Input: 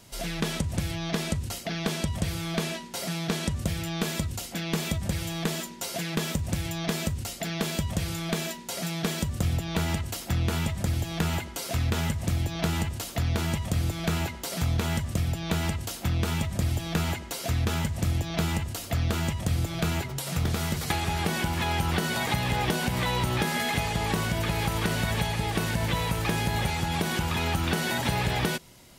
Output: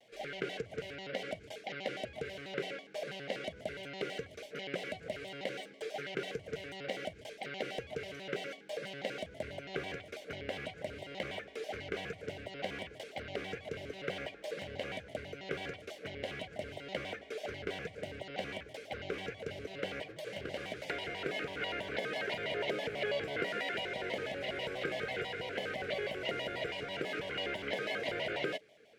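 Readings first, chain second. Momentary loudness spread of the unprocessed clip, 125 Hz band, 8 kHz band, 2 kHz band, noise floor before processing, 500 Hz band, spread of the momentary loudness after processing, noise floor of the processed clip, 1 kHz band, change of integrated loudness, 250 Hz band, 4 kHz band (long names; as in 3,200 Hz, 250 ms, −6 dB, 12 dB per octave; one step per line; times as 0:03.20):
4 LU, −23.5 dB, −23.0 dB, −6.5 dB, −40 dBFS, −3.0 dB, 8 LU, −54 dBFS, −12.0 dB, −11.0 dB, −16.0 dB, −9.5 dB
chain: formant filter e
pitch modulation by a square or saw wave square 6.1 Hz, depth 250 cents
level +5 dB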